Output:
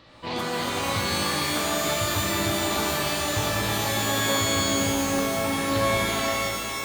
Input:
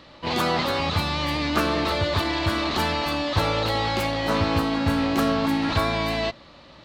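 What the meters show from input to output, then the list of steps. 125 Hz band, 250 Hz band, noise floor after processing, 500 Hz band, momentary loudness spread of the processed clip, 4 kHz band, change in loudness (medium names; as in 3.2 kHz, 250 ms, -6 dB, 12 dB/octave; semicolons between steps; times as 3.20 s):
-3.5 dB, -3.5 dB, -31 dBFS, -1.0 dB, 4 LU, +1.0 dB, -0.5 dB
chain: compression, threshold -23 dBFS, peak gain reduction 7.5 dB; pitch-shifted reverb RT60 3 s, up +12 st, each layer -2 dB, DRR -1.5 dB; trim -5 dB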